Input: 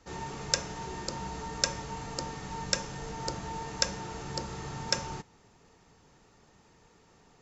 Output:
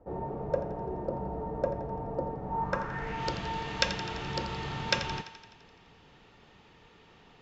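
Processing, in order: low-pass sweep 620 Hz -> 3200 Hz, 2.43–3.27; on a send: thinning echo 85 ms, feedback 66%, high-pass 420 Hz, level -11.5 dB; on the sum: gain +2.5 dB

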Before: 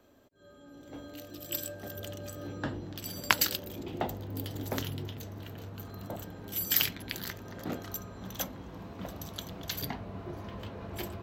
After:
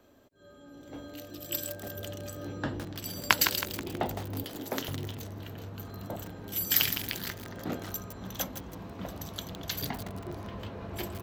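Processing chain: 4.43–4.89 HPF 220 Hz 12 dB/oct; lo-fi delay 0.161 s, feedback 55%, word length 6-bit, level -7 dB; gain +1.5 dB

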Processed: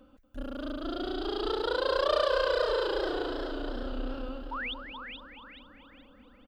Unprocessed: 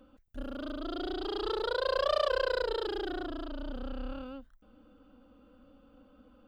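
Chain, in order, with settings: painted sound rise, 4.51–4.74, 840–3800 Hz -37 dBFS; feedback echo 0.233 s, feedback 56%, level -10 dB; warbling echo 0.427 s, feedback 38%, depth 76 cents, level -8 dB; gain +1.5 dB

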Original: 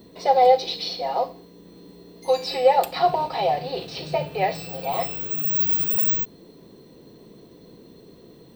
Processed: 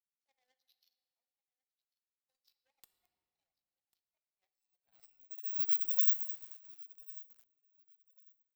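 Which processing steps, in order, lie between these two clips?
in parallel at -7 dB: sine folder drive 6 dB, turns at -5 dBFS; on the sum: differentiator; power-law curve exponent 3; reverb removal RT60 0.93 s; feedback echo 1.095 s, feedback 18%, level -21 dB; on a send at -10 dB: reverb RT60 2.7 s, pre-delay 5 ms; on the sum: lo-fi delay 0.218 s, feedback 35%, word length 6-bit, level -13 dB; gain -8.5 dB

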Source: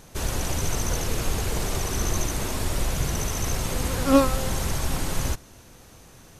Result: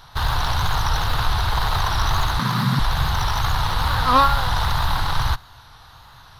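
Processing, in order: wow and flutter 130 cents; in parallel at -7 dB: Schmitt trigger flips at -29.5 dBFS; on the sum: EQ curve 130 Hz 0 dB, 200 Hz -13 dB, 360 Hz -14 dB, 550 Hz -10 dB, 890 Hz +9 dB, 1500 Hz +7 dB, 2400 Hz -4 dB, 3900 Hz +9 dB, 7400 Hz -17 dB, 12000 Hz -6 dB; 2.39–2.79 frequency shift +110 Hz; gain +3 dB

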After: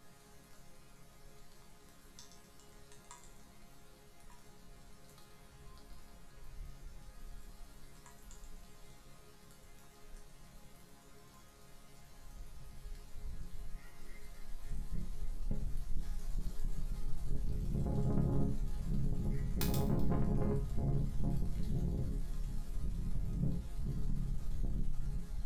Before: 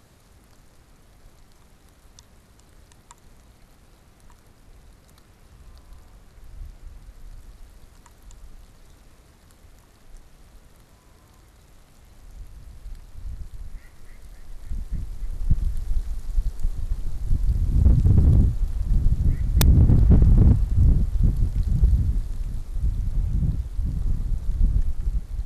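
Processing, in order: on a send: thin delay 0.127 s, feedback 34%, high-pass 2600 Hz, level -7.5 dB; on the sum: soft clip -23 dBFS, distortion -6 dB; 15.32–15.96 power-law curve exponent 1.4; resonator bank C#3 major, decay 0.36 s; gain +11 dB

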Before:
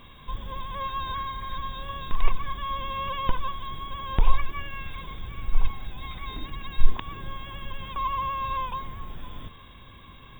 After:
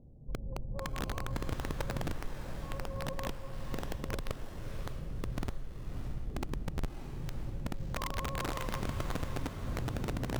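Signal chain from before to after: Wiener smoothing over 41 samples; recorder AGC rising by 8.3 dB/s; steep low-pass 830 Hz 36 dB/oct; bell 130 Hz +8 dB 0.32 oct; compressor 12:1, threshold -26 dBFS, peak gain reduction 21 dB; wrapped overs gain 23 dB; added harmonics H 5 -38 dB, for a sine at -23 dBFS; diffused feedback echo 0.611 s, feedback 44%, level -7.5 dB; gain -5.5 dB

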